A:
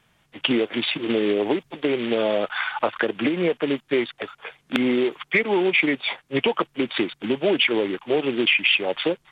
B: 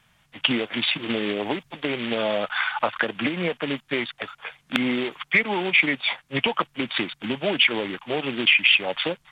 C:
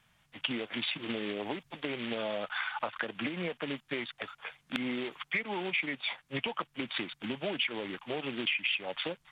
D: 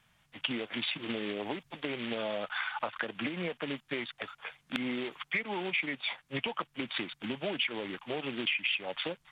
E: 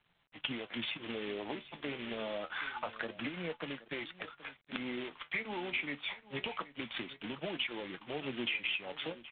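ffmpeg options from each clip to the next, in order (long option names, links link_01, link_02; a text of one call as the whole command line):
ffmpeg -i in.wav -af "equalizer=frequency=380:width_type=o:width=1.1:gain=-10,volume=2dB" out.wav
ffmpeg -i in.wav -af "acompressor=threshold=-27dB:ratio=2,volume=-6.5dB" out.wav
ffmpeg -i in.wav -af anull out.wav
ffmpeg -i in.wav -af "flanger=delay=5.7:depth=8.3:regen=62:speed=0.26:shape=sinusoidal,aecho=1:1:774:0.141" -ar 8000 -c:a adpcm_g726 -b:a 24k out.wav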